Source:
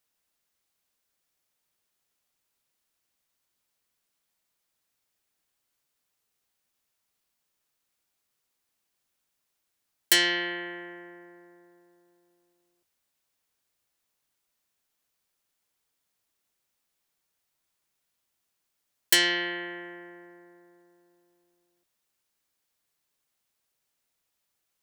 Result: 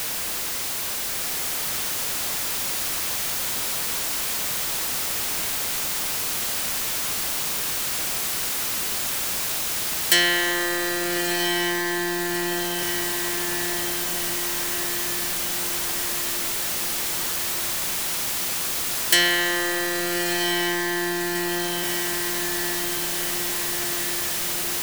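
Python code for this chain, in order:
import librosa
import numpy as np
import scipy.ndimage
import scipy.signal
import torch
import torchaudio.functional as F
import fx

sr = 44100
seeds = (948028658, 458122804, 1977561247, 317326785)

p1 = x + 0.5 * 10.0 ** (-22.5 / 20.0) * np.sign(x)
p2 = p1 + fx.echo_diffused(p1, sr, ms=1283, feedback_pct=60, wet_db=-5, dry=0)
y = p2 * librosa.db_to_amplitude(1.0)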